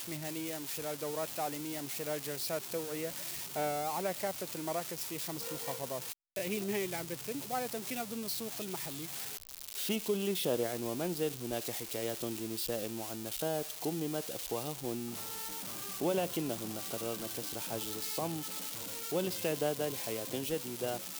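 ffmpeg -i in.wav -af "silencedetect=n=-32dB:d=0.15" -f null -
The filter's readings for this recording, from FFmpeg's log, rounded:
silence_start: 6.13
silence_end: 6.36 | silence_duration: 0.23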